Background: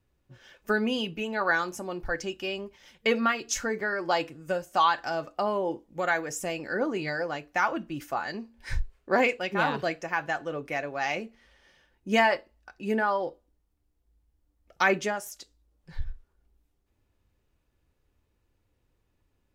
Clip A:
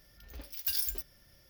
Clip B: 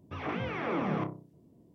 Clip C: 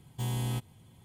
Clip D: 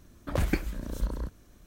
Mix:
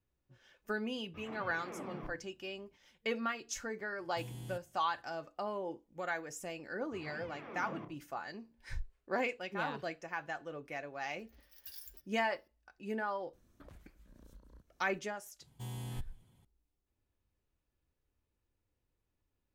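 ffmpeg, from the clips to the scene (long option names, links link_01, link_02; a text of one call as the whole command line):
ffmpeg -i bed.wav -i cue0.wav -i cue1.wav -i cue2.wav -i cue3.wav -filter_complex "[2:a]asplit=2[link_01][link_02];[3:a]asplit=2[link_03][link_04];[0:a]volume=-11dB[link_05];[link_03]equalizer=frequency=1100:width_type=o:width=1.3:gain=-6[link_06];[4:a]acompressor=threshold=-38dB:ratio=8:attack=9.3:release=361:knee=1:detection=rms[link_07];[link_01]atrim=end=1.74,asetpts=PTS-STARTPTS,volume=-14.5dB,afade=type=in:duration=0.004:curve=hsin,afade=type=out:start_time=1.736:duration=0.004:curve=hsin,adelay=1030[link_08];[link_06]atrim=end=1.04,asetpts=PTS-STARTPTS,volume=-14dB,afade=type=in:duration=0.004:curve=hsin,afade=type=out:start_time=1.036:duration=0.004:curve=hsin,adelay=3980[link_09];[link_02]atrim=end=1.74,asetpts=PTS-STARTPTS,volume=-15.5dB,afade=type=in:duration=0.004:curve=hsin,afade=type=out:start_time=1.736:duration=0.004:curve=hsin,adelay=6810[link_10];[1:a]atrim=end=1.49,asetpts=PTS-STARTPTS,volume=-18dB,afade=type=in:duration=0.004:curve=hsin,afade=type=out:start_time=1.486:duration=0.004:curve=hsin,adelay=10990[link_11];[link_07]atrim=end=1.66,asetpts=PTS-STARTPTS,volume=-14dB,afade=type=in:duration=0.004:curve=hsin,afade=type=out:start_time=1.656:duration=0.004:curve=hsin,adelay=13330[link_12];[link_04]atrim=end=1.04,asetpts=PTS-STARTPTS,volume=-10.5dB,afade=type=in:duration=0.004:curve=hsin,afade=type=out:start_time=1.036:duration=0.004:curve=hsin,adelay=15410[link_13];[link_05][link_08][link_09][link_10][link_11][link_12][link_13]amix=inputs=7:normalize=0" out.wav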